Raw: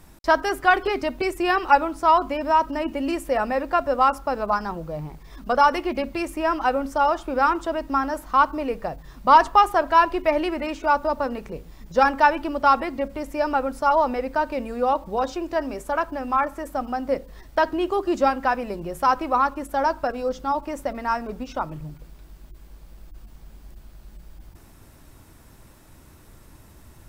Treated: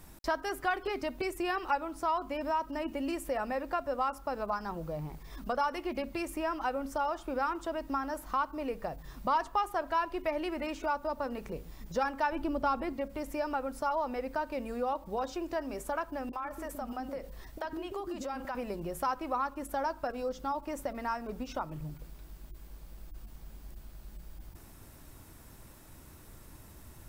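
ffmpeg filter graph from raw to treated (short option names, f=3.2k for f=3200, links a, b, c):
-filter_complex "[0:a]asettb=1/sr,asplit=3[a][b][c];[a]atrim=end=12.324[d];[b]atrim=start=12.32:end=12.93,asetpts=PTS-STARTPTS,afade=t=in:d=0.004:c=qsin,afade=t=out:st=0.606:d=0.004:c=qsin,lowshelf=f=440:g=9.5,bandreject=f=1.9k:w=23[e];[c]atrim=start=12.926[f];[d][e]acrossfade=d=0.004:c1=hsin:c2=qsin[g];[g][f]acrossfade=d=0.004:c1=qsin:c2=hsin,asettb=1/sr,asplit=3[h][i][j];[h]atrim=end=16.294[k];[i]atrim=start=16.29:end=18.55,asetpts=PTS-STARTPTS,afade=t=in:d=0.004:c=qsin,afade=t=out:st=2.256:d=0.004:c=qsin,acompressor=threshold=-28dB:ratio=4:attack=3.2:release=140:knee=1:detection=peak,acrossover=split=390[l][m];[m]adelay=40[n];[l][n]amix=inputs=2:normalize=0,atrim=end_sample=99666[o];[j]atrim=start=18.546[p];[k][o]acrossfade=d=0.004:c1=hsin:c2=qsin[q];[q][p]acrossfade=d=0.004:c1=qsin:c2=hsin,highshelf=f=10k:g=6.5,acompressor=threshold=-32dB:ratio=2,volume=-3.5dB"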